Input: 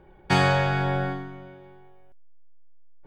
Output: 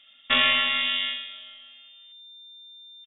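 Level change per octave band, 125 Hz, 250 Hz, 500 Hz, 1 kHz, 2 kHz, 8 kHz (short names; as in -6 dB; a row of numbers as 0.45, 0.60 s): under -25 dB, -11.5 dB, -11.5 dB, -6.5 dB, +3.5 dB, n/a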